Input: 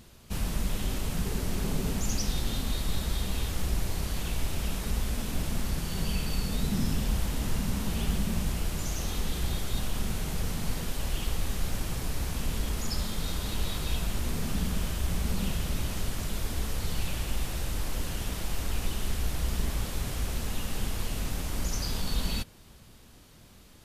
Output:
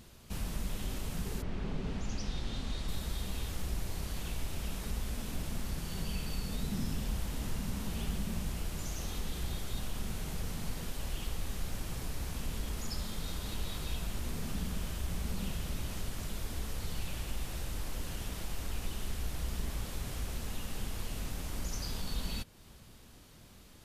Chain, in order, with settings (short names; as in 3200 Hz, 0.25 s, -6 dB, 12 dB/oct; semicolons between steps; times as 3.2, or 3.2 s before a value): 1.41–2.87 LPF 2700 Hz -> 7100 Hz 12 dB/oct; in parallel at +1 dB: compressor, threshold -40 dBFS, peak gain reduction 17 dB; on the sum: gain -8.5 dB